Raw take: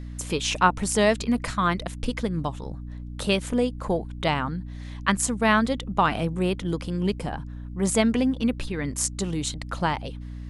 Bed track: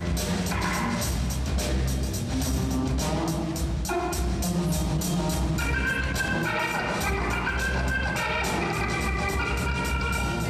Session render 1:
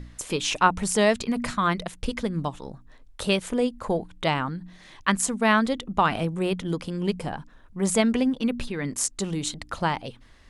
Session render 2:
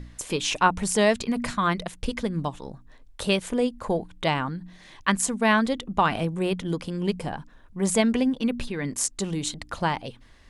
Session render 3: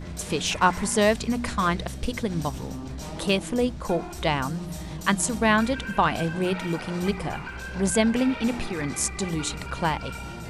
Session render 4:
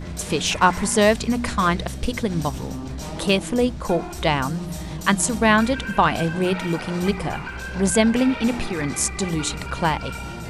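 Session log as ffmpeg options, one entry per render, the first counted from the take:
-af "bandreject=f=60:t=h:w=4,bandreject=f=120:t=h:w=4,bandreject=f=180:t=h:w=4,bandreject=f=240:t=h:w=4,bandreject=f=300:t=h:w=4"
-af "bandreject=f=1.3k:w=18"
-filter_complex "[1:a]volume=-9.5dB[a];[0:a][a]amix=inputs=2:normalize=0"
-af "volume=4dB,alimiter=limit=-3dB:level=0:latency=1"

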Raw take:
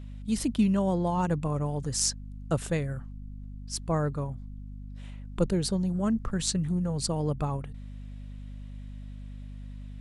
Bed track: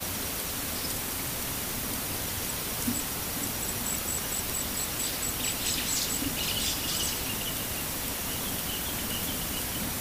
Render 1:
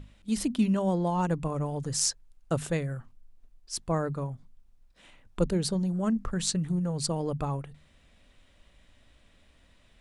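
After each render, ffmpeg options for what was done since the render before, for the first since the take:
-af "bandreject=f=50:t=h:w=6,bandreject=f=100:t=h:w=6,bandreject=f=150:t=h:w=6,bandreject=f=200:t=h:w=6,bandreject=f=250:t=h:w=6"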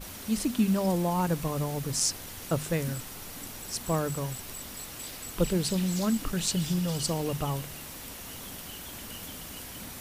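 -filter_complex "[1:a]volume=-9.5dB[a];[0:a][a]amix=inputs=2:normalize=0"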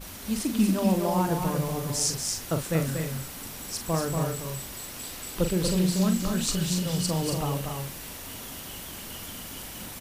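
-filter_complex "[0:a]asplit=2[a][b];[b]adelay=43,volume=-8dB[c];[a][c]amix=inputs=2:normalize=0,aecho=1:1:236.2|274.1:0.562|0.355"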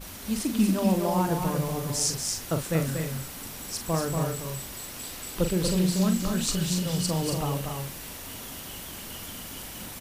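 -af anull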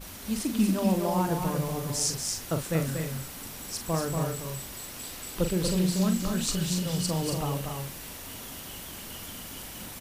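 -af "volume=-1.5dB"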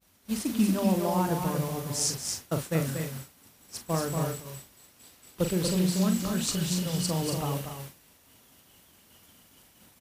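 -af "agate=range=-33dB:threshold=-29dB:ratio=3:detection=peak,highpass=58"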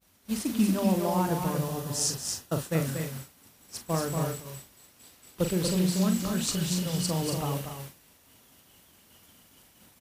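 -filter_complex "[0:a]asettb=1/sr,asplit=3[a][b][c];[a]atrim=end=1.604[d];[b]atrim=start=1.6:end=2.7,asetpts=PTS-STARTPTS,afade=t=in:d=0.004:c=qsin,afade=t=out:st=1.096:d=0.004:c=qsin,bandreject=f=2.2k:w=6.6[e];[c]atrim=start=2.696[f];[d][e]acrossfade=d=0.004:c1=hsin:c2=qsin[g];[g][f]acrossfade=d=0.004:c1=qsin:c2=hsin"

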